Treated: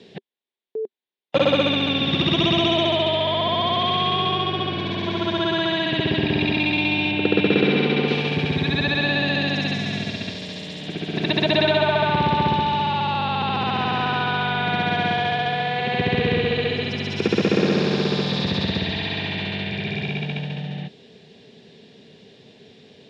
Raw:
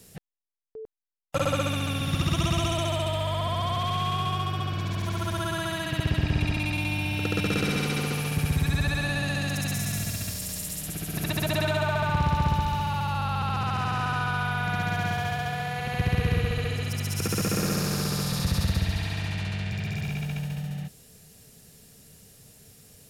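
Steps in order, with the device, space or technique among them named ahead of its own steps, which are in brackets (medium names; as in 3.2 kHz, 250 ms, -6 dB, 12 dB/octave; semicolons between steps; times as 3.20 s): kitchen radio (cabinet simulation 210–3800 Hz, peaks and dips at 230 Hz +5 dB, 390 Hz +8 dB, 1.3 kHz -10 dB, 3.6 kHz +7 dB); 7.11–8.08 s: Bessel low-pass 3.1 kHz, order 2; trim +8.5 dB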